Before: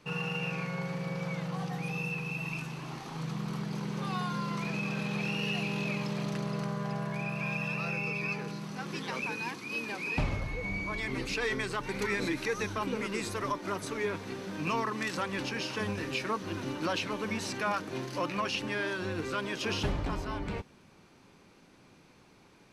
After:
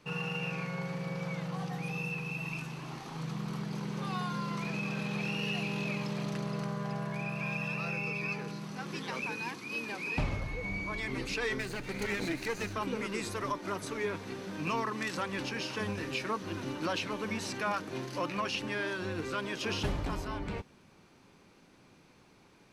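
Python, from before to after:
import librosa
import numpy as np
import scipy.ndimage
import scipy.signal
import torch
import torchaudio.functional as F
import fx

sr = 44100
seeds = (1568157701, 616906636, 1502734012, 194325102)

y = fx.lower_of_two(x, sr, delay_ms=0.46, at=(11.58, 12.73))
y = fx.high_shelf(y, sr, hz=8300.0, db=9.0, at=(19.84, 20.28))
y = F.gain(torch.from_numpy(y), -1.5).numpy()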